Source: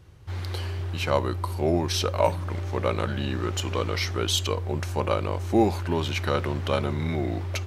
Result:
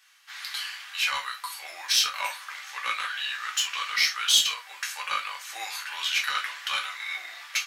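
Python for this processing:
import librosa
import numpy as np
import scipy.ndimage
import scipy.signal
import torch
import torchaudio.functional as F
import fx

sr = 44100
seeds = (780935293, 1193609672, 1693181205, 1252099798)

p1 = scipy.signal.sosfilt(scipy.signal.butter(4, 1400.0, 'highpass', fs=sr, output='sos'), x)
p2 = np.clip(p1, -10.0 ** (-26.5 / 20.0), 10.0 ** (-26.5 / 20.0))
p3 = p1 + (p2 * librosa.db_to_amplitude(-4.0))
y = fx.rev_gated(p3, sr, seeds[0], gate_ms=90, shape='falling', drr_db=-1.0)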